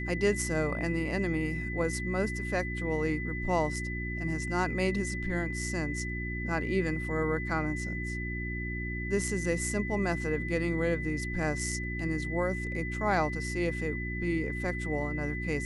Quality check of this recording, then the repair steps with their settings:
hum 60 Hz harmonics 6 -36 dBFS
whine 2 kHz -37 dBFS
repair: band-stop 2 kHz, Q 30; de-hum 60 Hz, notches 6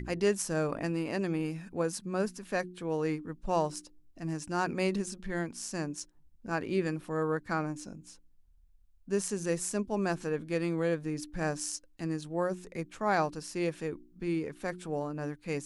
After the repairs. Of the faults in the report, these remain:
nothing left

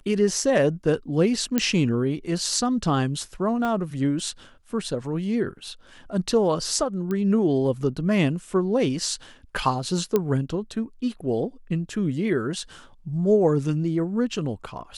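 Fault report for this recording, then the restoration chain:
1.58 s: pop -7 dBFS
3.65 s: pop -16 dBFS
7.11 s: pop -17 dBFS
10.16 s: pop -9 dBFS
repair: de-click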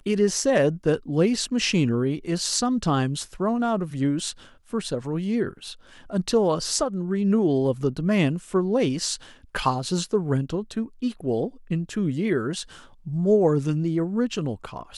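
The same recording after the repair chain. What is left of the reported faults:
3.65 s: pop
10.16 s: pop

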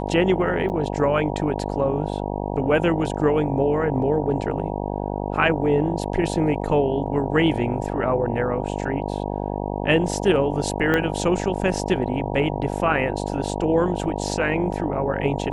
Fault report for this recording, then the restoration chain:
buzz 50 Hz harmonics 19 -27 dBFS
0.69–0.70 s: dropout 9.1 ms
10.94 s: pop -9 dBFS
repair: de-click; de-hum 50 Hz, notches 19; interpolate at 0.69 s, 9.1 ms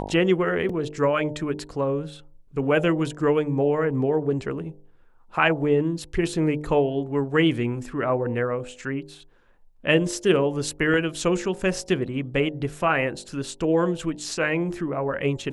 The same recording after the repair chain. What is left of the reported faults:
10.94 s: pop

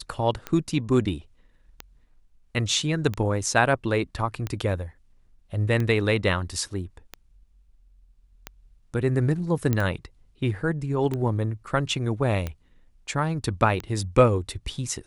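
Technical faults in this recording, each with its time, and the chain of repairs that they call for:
tick 45 rpm -16 dBFS
9.73 s: pop -11 dBFS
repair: de-click

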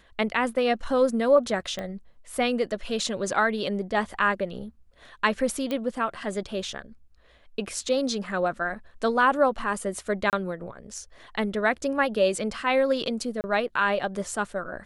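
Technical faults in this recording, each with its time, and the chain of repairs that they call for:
1.79 s: pop -19 dBFS
5.71 s: pop -17 dBFS
10.30–10.33 s: dropout 28 ms
13.41–13.44 s: dropout 29 ms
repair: de-click; interpolate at 10.30 s, 28 ms; interpolate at 13.41 s, 29 ms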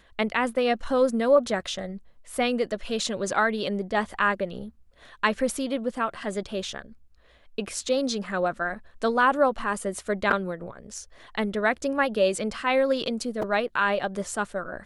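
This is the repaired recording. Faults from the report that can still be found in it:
1.79 s: pop

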